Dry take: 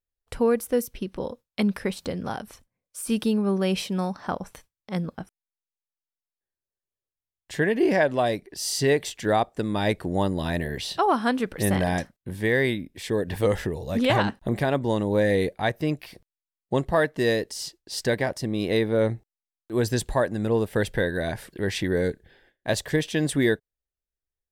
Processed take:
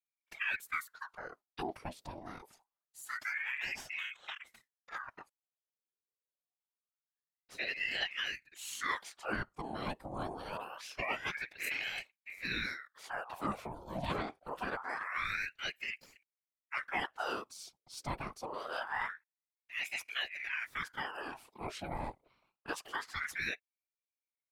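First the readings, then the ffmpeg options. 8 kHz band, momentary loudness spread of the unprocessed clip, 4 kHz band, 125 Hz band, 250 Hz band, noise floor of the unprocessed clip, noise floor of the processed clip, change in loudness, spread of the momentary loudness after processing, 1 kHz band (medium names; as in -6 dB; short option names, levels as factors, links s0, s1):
-15.0 dB, 11 LU, -8.5 dB, -22.0 dB, -22.5 dB, under -85 dBFS, under -85 dBFS, -13.5 dB, 12 LU, -11.0 dB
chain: -af "afftfilt=real='hypot(re,im)*cos(2*PI*random(0))':imag='hypot(re,im)*sin(2*PI*random(1))':win_size=512:overlap=0.75,aeval=exprs='val(0)*sin(2*PI*1400*n/s+1400*0.7/0.25*sin(2*PI*0.25*n/s))':c=same,volume=0.473"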